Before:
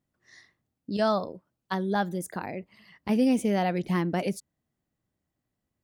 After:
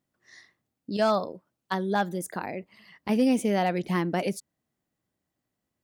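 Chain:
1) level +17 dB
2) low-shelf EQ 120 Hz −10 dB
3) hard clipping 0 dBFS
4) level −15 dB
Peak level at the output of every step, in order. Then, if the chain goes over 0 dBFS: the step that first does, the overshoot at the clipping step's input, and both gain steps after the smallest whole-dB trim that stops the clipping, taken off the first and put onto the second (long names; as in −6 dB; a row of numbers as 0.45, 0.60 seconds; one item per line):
+2.5, +3.0, 0.0, −15.0 dBFS
step 1, 3.0 dB
step 1 +14 dB, step 4 −12 dB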